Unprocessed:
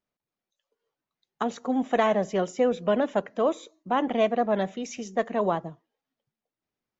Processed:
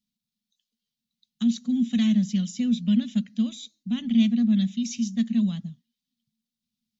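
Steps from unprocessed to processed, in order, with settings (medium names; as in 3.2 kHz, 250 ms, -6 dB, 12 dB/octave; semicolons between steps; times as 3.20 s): FFT filter 140 Hz 0 dB, 230 Hz +14 dB, 330 Hz -26 dB, 950 Hz -30 dB, 3.8 kHz +9 dB, 8.1 kHz +3 dB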